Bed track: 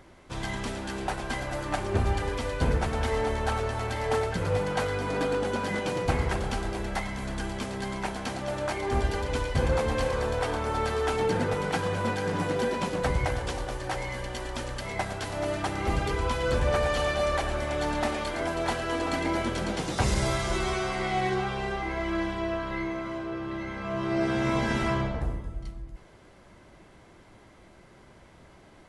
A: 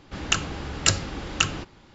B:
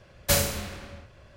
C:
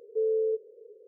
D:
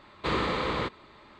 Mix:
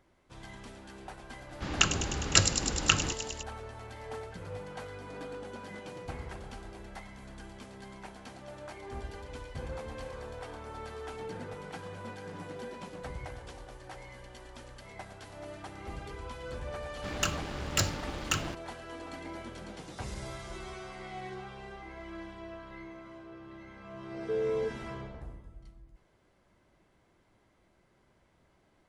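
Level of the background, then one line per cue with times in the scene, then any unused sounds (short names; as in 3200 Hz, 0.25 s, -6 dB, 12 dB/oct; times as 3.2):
bed track -14.5 dB
1.49 add A -2 dB + thin delay 0.102 s, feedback 77%, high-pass 4600 Hz, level -5 dB
16.91 add A -15.5 dB + sample leveller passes 3
24.13 add C -4.5 dB
not used: B, D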